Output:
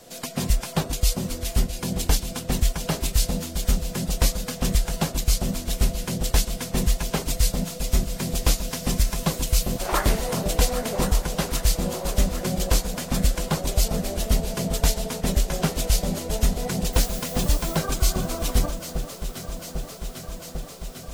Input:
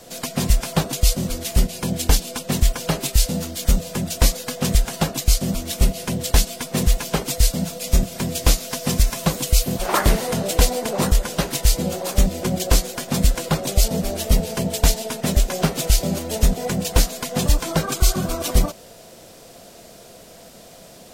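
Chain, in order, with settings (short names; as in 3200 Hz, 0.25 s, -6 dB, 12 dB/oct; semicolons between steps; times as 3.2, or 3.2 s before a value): 16.92–17.76 added noise blue -34 dBFS; echo with dull and thin repeats by turns 0.399 s, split 1100 Hz, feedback 88%, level -10.5 dB; gain -4.5 dB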